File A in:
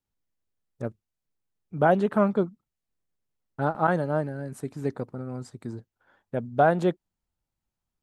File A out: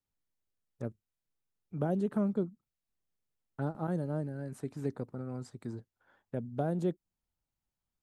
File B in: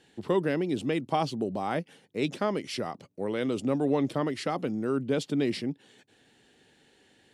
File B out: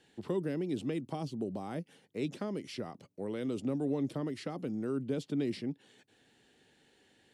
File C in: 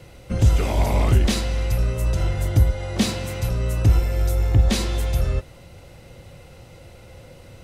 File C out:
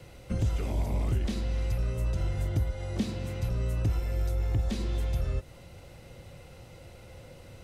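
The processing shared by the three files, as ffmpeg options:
ffmpeg -i in.wav -filter_complex "[0:a]acrossover=split=430|5400[link_01][link_02][link_03];[link_01]acompressor=threshold=-21dB:ratio=4[link_04];[link_02]acompressor=threshold=-40dB:ratio=4[link_05];[link_03]acompressor=threshold=-52dB:ratio=4[link_06];[link_04][link_05][link_06]amix=inputs=3:normalize=0,volume=-4.5dB" out.wav

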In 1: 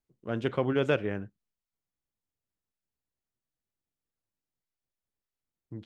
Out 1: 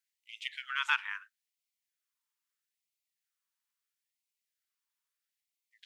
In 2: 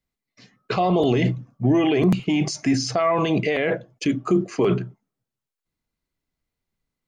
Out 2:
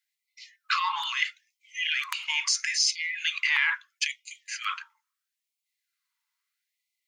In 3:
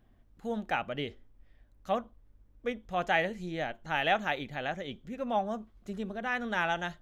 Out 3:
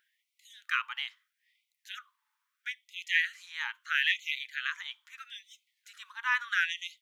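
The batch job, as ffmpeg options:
ffmpeg -i in.wav -af "acontrast=31,afftfilt=real='re*gte(b*sr/1024,820*pow(2000/820,0.5+0.5*sin(2*PI*0.76*pts/sr)))':imag='im*gte(b*sr/1024,820*pow(2000/820,0.5+0.5*sin(2*PI*0.76*pts/sr)))':win_size=1024:overlap=0.75" out.wav

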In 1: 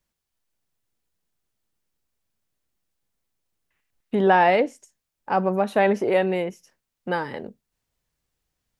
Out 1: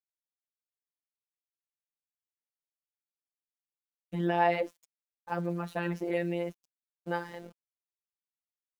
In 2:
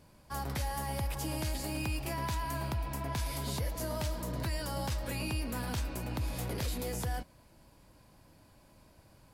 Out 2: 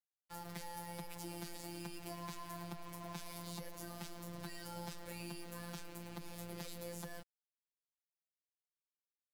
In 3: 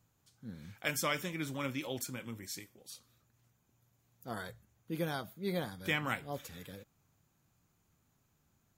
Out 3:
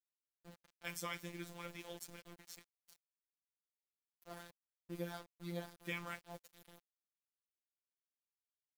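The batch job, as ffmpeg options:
ffmpeg -i in.wav -af "aeval=exprs='val(0)*gte(abs(val(0)),0.00841)':channel_layout=same,afftfilt=real='hypot(re,im)*cos(PI*b)':imag='0':win_size=1024:overlap=0.75,volume=-6.5dB" out.wav

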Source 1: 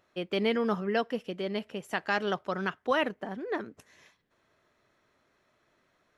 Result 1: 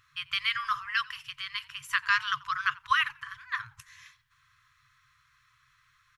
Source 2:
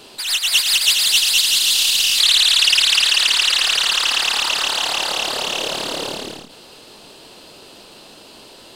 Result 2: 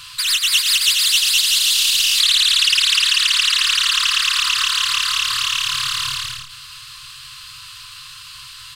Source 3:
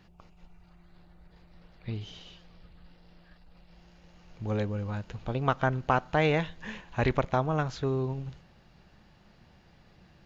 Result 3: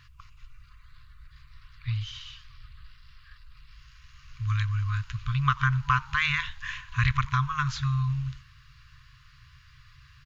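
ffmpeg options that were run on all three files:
ffmpeg -i in.wav -filter_complex "[0:a]afftfilt=real='re*(1-between(b*sr/4096,150,1000))':imag='im*(1-between(b*sr/4096,150,1000))':win_size=4096:overlap=0.75,acompressor=threshold=-26dB:ratio=2,asplit=3[link_01][link_02][link_03];[link_02]adelay=88,afreqshift=-97,volume=-23.5dB[link_04];[link_03]adelay=176,afreqshift=-194,volume=-33.7dB[link_05];[link_01][link_04][link_05]amix=inputs=3:normalize=0,volume=7dB" out.wav

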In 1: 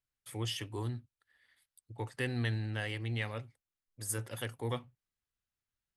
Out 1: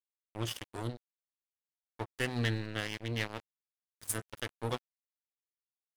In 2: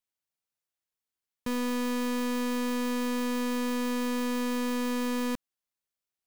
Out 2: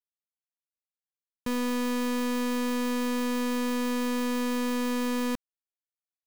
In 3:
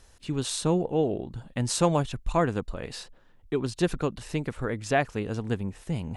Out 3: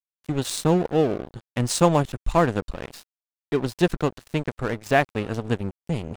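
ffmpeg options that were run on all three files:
ffmpeg -i in.wav -af "aeval=exprs='sgn(val(0))*max(abs(val(0))-0.0141,0)':channel_layout=same,volume=6dB" out.wav

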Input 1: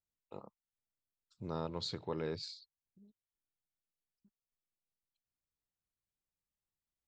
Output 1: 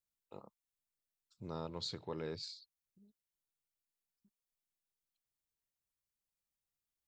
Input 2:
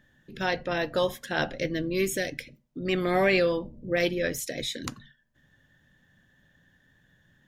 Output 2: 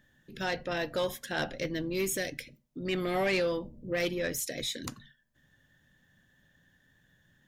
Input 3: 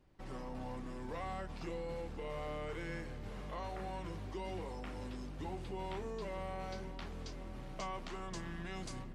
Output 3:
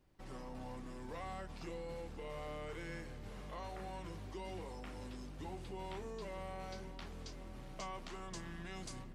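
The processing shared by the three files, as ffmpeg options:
ffmpeg -i in.wav -af "highshelf=frequency=4900:gain=6,asoftclip=type=tanh:threshold=-18.5dB,volume=-3.5dB" out.wav

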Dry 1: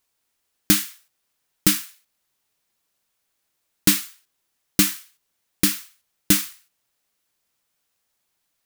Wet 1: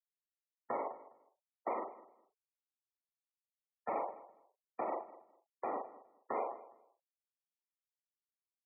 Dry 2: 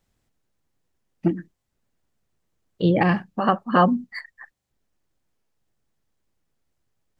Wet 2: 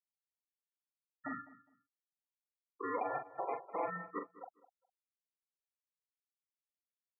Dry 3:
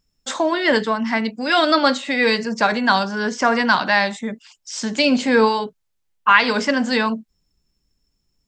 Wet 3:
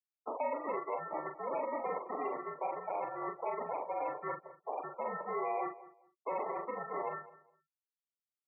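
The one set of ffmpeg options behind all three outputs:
ffmpeg -i in.wav -filter_complex "[0:a]acrusher=samples=27:mix=1:aa=0.000001,asplit=2[link_01][link_02];[link_02]highpass=frequency=720:poles=1,volume=6dB,asoftclip=type=tanh:threshold=-1dB[link_03];[link_01][link_03]amix=inputs=2:normalize=0,lowpass=frequency=2300:poles=1,volume=-6dB,areverse,acompressor=threshold=-32dB:ratio=8,areverse,highshelf=frequency=2200:gain=-8.5,acompressor=mode=upward:threshold=-40dB:ratio=2.5,acrossover=split=500 2600:gain=0.0891 1 0.0891[link_04][link_05][link_06];[link_04][link_05][link_06]amix=inputs=3:normalize=0,afftfilt=real='re*gte(hypot(re,im),0.0112)':imag='im*gte(hypot(re,im),0.0112)':win_size=1024:overlap=0.75,alimiter=level_in=10.5dB:limit=-24dB:level=0:latency=1:release=307,volume=-10.5dB,bandreject=frequency=1300:width=24,asplit=2[link_07][link_08];[link_08]adelay=42,volume=-7dB[link_09];[link_07][link_09]amix=inputs=2:normalize=0,asplit=2[link_10][link_11];[link_11]adelay=205,lowpass=frequency=1900:poles=1,volume=-17dB,asplit=2[link_12][link_13];[link_13]adelay=205,lowpass=frequency=1900:poles=1,volume=0.23[link_14];[link_12][link_14]amix=inputs=2:normalize=0[link_15];[link_10][link_15]amix=inputs=2:normalize=0,highpass=frequency=250:width_type=q:width=0.5412,highpass=frequency=250:width_type=q:width=1.307,lowpass=frequency=3400:width_type=q:width=0.5176,lowpass=frequency=3400:width_type=q:width=0.7071,lowpass=frequency=3400:width_type=q:width=1.932,afreqshift=-65,volume=7.5dB" out.wav

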